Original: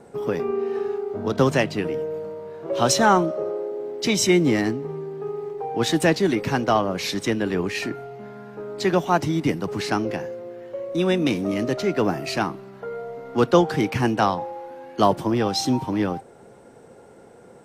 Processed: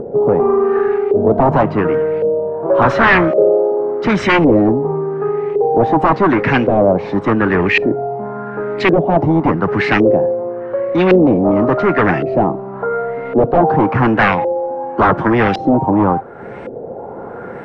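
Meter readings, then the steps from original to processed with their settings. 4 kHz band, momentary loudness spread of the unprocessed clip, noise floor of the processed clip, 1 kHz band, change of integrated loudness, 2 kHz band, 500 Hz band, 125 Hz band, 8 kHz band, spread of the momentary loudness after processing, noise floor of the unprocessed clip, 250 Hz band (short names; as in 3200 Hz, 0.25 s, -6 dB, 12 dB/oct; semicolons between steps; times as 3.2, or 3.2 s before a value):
-1.0 dB, 16 LU, -29 dBFS, +9.5 dB, +8.5 dB, +11.5 dB, +10.5 dB, +8.5 dB, under -15 dB, 11 LU, -48 dBFS, +8.5 dB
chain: sine folder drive 15 dB, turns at -2 dBFS; LFO low-pass saw up 0.9 Hz 470–2500 Hz; upward compressor, threshold -14 dBFS; gain -7 dB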